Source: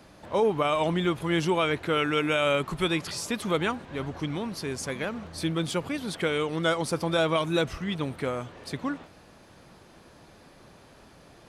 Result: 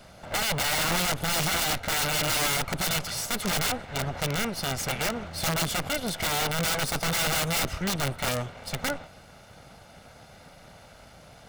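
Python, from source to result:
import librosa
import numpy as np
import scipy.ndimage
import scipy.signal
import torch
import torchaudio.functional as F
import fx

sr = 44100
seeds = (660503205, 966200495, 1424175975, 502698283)

y = fx.lower_of_two(x, sr, delay_ms=1.4)
y = fx.peak_eq(y, sr, hz=2300.0, db=2.5, octaves=2.0, at=(3.41, 5.65))
y = (np.mod(10.0 ** (25.5 / 20.0) * y + 1.0, 2.0) - 1.0) / 10.0 ** (25.5 / 20.0)
y = y * 10.0 ** (4.5 / 20.0)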